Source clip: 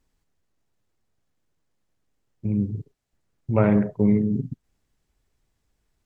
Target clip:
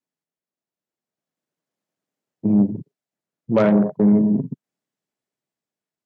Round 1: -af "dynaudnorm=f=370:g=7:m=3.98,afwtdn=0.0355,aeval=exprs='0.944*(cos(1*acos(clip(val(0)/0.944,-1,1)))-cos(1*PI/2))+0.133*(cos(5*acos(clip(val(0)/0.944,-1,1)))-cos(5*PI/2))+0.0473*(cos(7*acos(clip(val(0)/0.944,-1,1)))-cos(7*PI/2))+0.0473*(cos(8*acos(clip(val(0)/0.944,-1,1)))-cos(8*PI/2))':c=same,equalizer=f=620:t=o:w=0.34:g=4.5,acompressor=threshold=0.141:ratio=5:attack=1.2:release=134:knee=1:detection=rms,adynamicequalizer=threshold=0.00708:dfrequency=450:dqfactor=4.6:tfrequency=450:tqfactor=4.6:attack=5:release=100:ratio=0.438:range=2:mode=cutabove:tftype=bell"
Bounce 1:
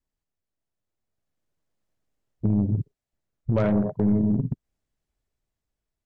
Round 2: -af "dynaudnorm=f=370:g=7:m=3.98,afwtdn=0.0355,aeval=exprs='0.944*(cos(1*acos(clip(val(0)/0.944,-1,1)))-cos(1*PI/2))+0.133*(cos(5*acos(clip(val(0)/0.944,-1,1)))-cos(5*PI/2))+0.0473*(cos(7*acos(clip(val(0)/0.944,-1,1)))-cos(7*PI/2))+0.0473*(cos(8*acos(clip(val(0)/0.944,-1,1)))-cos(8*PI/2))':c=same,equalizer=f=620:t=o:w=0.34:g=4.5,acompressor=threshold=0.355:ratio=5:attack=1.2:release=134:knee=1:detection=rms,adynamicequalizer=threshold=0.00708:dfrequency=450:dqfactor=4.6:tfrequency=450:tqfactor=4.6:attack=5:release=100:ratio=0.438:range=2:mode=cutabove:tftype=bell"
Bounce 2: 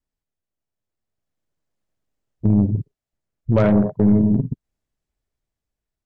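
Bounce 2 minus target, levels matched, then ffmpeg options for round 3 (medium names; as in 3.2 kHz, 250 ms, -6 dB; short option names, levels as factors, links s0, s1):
125 Hz band +6.0 dB
-af "dynaudnorm=f=370:g=7:m=3.98,afwtdn=0.0355,aeval=exprs='0.944*(cos(1*acos(clip(val(0)/0.944,-1,1)))-cos(1*PI/2))+0.133*(cos(5*acos(clip(val(0)/0.944,-1,1)))-cos(5*PI/2))+0.0473*(cos(7*acos(clip(val(0)/0.944,-1,1)))-cos(7*PI/2))+0.0473*(cos(8*acos(clip(val(0)/0.944,-1,1)))-cos(8*PI/2))':c=same,highpass=f=160:w=0.5412,highpass=f=160:w=1.3066,equalizer=f=620:t=o:w=0.34:g=4.5,acompressor=threshold=0.355:ratio=5:attack=1.2:release=134:knee=1:detection=rms,adynamicequalizer=threshold=0.00708:dfrequency=450:dqfactor=4.6:tfrequency=450:tqfactor=4.6:attack=5:release=100:ratio=0.438:range=2:mode=cutabove:tftype=bell"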